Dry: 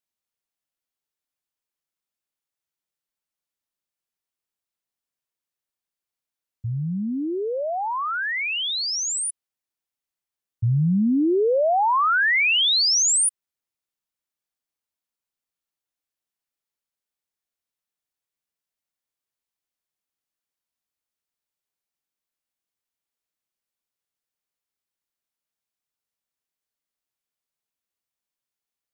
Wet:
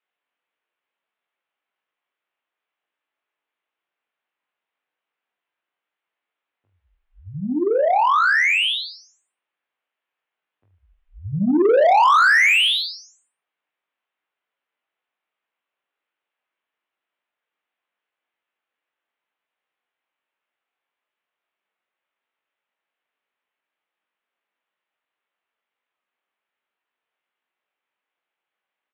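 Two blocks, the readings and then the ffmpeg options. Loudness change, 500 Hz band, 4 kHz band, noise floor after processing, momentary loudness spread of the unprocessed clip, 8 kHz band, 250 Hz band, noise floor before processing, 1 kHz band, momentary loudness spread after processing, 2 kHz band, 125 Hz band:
+4.5 dB, +4.0 dB, −0.5 dB, below −85 dBFS, 11 LU, −17.0 dB, −0.5 dB, below −85 dBFS, +5.5 dB, 15 LU, +5.5 dB, −8.0 dB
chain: -filter_complex "[0:a]highpass=frequency=350:width_type=q:width=0.5412,highpass=frequency=350:width_type=q:width=1.307,lowpass=frequency=3400:width_type=q:width=0.5176,lowpass=frequency=3400:width_type=q:width=0.7071,lowpass=frequency=3400:width_type=q:width=1.932,afreqshift=-220,highpass=frequency=190:poles=1,aecho=1:1:20|44|72.8|107.4|148.8:0.631|0.398|0.251|0.158|0.1,asplit=2[link_01][link_02];[link_02]highpass=frequency=720:poles=1,volume=18dB,asoftclip=type=tanh:threshold=-7.5dB[link_03];[link_01][link_03]amix=inputs=2:normalize=0,lowpass=frequency=2500:poles=1,volume=-6dB"

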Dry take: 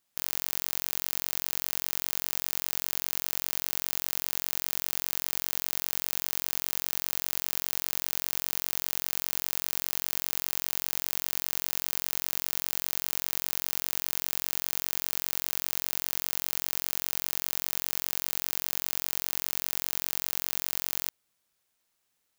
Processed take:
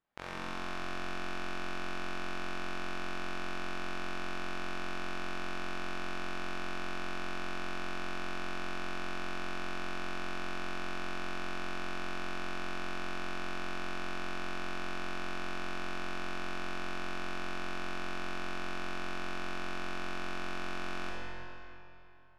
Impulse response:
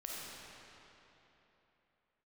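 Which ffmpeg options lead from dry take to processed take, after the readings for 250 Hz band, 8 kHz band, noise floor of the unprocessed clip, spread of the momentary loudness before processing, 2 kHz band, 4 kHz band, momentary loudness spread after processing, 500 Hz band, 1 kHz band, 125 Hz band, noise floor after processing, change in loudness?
+5.0 dB, −23.5 dB, −77 dBFS, 0 LU, −0.5 dB, −10.5 dB, 0 LU, +1.5 dB, +1.5 dB, +1.0 dB, −42 dBFS, −10.0 dB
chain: -filter_complex "[0:a]lowpass=1700[link_01];[1:a]atrim=start_sample=2205,asetrate=52920,aresample=44100[link_02];[link_01][link_02]afir=irnorm=-1:irlink=0,volume=6dB"

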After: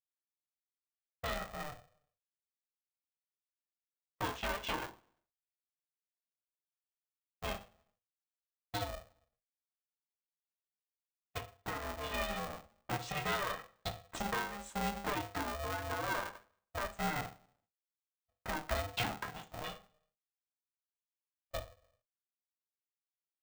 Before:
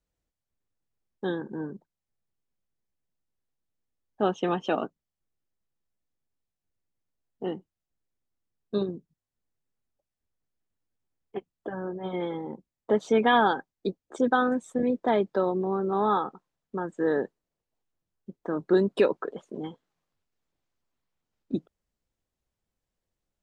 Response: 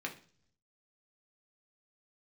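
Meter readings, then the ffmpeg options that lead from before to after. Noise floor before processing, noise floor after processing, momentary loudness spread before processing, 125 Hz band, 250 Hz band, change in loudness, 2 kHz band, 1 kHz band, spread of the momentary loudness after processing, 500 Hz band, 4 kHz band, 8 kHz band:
below −85 dBFS, below −85 dBFS, 15 LU, −5.5 dB, −16.5 dB, −12.0 dB, −5.5 dB, −10.0 dB, 10 LU, −16.0 dB, −1.5 dB, can't be measured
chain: -filter_complex "[0:a]highpass=850,agate=range=-30dB:threshold=-53dB:ratio=16:detection=peak,acompressor=threshold=-41dB:ratio=5[link_01];[1:a]atrim=start_sample=2205,asetrate=52920,aresample=44100[link_02];[link_01][link_02]afir=irnorm=-1:irlink=0,aeval=exprs='val(0)*sgn(sin(2*PI*300*n/s))':channel_layout=same,volume=7dB"

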